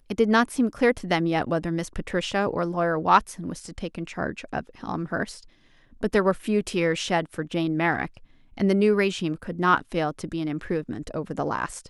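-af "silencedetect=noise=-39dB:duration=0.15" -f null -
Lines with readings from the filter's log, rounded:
silence_start: 5.43
silence_end: 6.01 | silence_duration: 0.58
silence_start: 8.17
silence_end: 8.57 | silence_duration: 0.40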